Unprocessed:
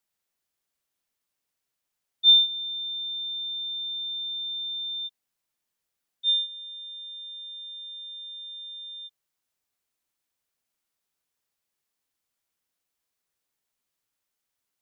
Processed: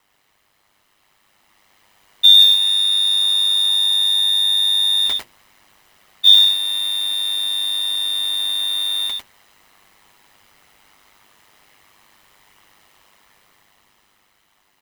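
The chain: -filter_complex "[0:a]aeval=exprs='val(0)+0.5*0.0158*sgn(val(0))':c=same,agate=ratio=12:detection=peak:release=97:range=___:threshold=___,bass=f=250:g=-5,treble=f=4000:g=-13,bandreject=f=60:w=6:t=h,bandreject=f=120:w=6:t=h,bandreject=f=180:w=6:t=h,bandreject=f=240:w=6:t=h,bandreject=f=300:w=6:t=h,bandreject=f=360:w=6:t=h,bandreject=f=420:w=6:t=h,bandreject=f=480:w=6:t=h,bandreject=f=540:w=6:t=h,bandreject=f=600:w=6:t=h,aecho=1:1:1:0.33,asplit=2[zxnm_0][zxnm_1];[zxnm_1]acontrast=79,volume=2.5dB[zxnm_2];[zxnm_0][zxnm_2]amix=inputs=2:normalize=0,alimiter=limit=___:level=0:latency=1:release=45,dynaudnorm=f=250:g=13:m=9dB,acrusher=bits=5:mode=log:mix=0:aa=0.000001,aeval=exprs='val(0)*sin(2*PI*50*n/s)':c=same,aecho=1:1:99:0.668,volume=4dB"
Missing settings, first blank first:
-28dB, -40dB, -13.5dB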